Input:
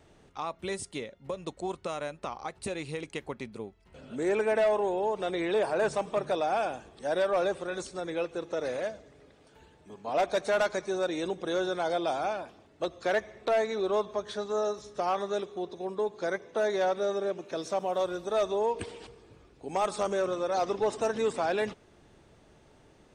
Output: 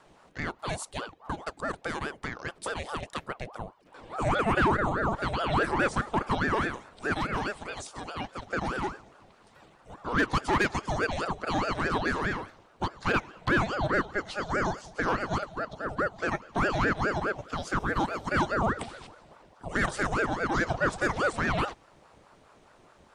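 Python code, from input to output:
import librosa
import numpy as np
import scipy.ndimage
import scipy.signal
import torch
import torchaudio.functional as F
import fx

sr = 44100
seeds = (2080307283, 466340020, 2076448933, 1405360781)

y = fx.peak_eq(x, sr, hz=430.0, db=-6.0, octaves=2.7, at=(7.13, 8.47))
y = fx.ring_lfo(y, sr, carrier_hz=630.0, swing_pct=65, hz=4.8)
y = y * librosa.db_to_amplitude(4.0)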